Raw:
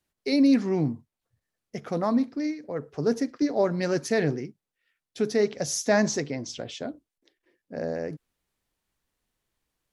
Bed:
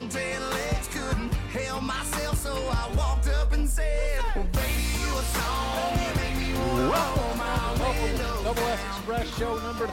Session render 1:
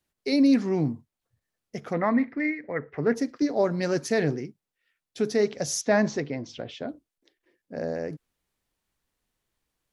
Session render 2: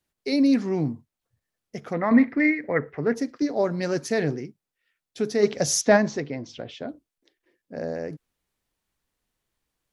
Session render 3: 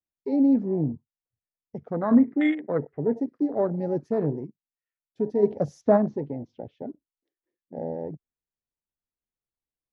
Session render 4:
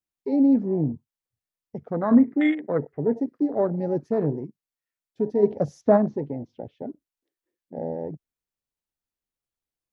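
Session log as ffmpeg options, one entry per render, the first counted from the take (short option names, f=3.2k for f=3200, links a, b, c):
-filter_complex "[0:a]asplit=3[a][b][c];[a]afade=t=out:st=1.92:d=0.02[d];[b]lowpass=f=2k:t=q:w=8.2,afade=t=in:st=1.92:d=0.02,afade=t=out:st=3.14:d=0.02[e];[c]afade=t=in:st=3.14:d=0.02[f];[d][e][f]amix=inputs=3:normalize=0,asettb=1/sr,asplit=3[g][h][i];[g]atrim=end=5.814[j];[h]atrim=start=5.81:end=6.89,asetpts=PTS-STARTPTS,afade=t=in:d=0.004:c=qsin,afade=t=out:st=1.076:d=0.004:c=qsin,lowpass=3.5k[k];[i]atrim=start=6.886[l];[j][k]acrossfade=d=0.004:c1=hsin:c2=qsin[m];[m][l]acrossfade=d=0.004:c1=qsin:c2=hsin"
-filter_complex "[0:a]asplit=3[a][b][c];[a]afade=t=out:st=5.42:d=0.02[d];[b]acontrast=44,afade=t=in:st=5.42:d=0.02,afade=t=out:st=5.96:d=0.02[e];[c]afade=t=in:st=5.96:d=0.02[f];[d][e][f]amix=inputs=3:normalize=0,asplit=3[g][h][i];[g]atrim=end=2.112[j];[h]atrim=start=2.108:end=2.922,asetpts=PTS-STARTPTS,volume=6.5dB[k];[i]atrim=start=2.918[l];[j][k]acrossfade=d=0.004:c1=hsin:c2=hsin[m];[m][l]acrossfade=d=0.004:c1=hsin:c2=hsin"
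-af "lowpass=f=1k:p=1,afwtdn=0.0355"
-af "volume=1.5dB"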